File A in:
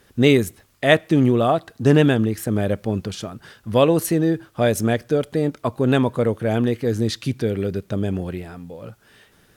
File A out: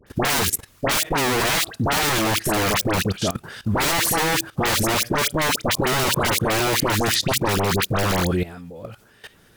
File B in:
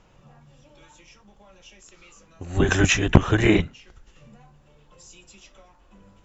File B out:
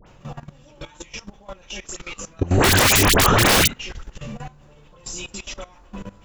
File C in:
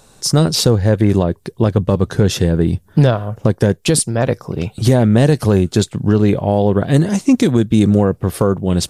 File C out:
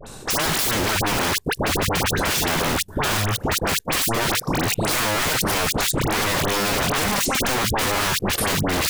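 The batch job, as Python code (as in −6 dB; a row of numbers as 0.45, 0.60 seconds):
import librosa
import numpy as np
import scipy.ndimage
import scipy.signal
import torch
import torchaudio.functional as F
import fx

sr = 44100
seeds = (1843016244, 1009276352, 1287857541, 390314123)

y = (np.mod(10.0 ** (16.5 / 20.0) * x + 1.0, 2.0) - 1.0) / 10.0 ** (16.5 / 20.0)
y = fx.dispersion(y, sr, late='highs', ms=68.0, hz=1500.0)
y = fx.level_steps(y, sr, step_db=17)
y = y * 10.0 ** (-22 / 20.0) / np.sqrt(np.mean(np.square(y)))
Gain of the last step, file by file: +13.5, +19.0, +12.5 decibels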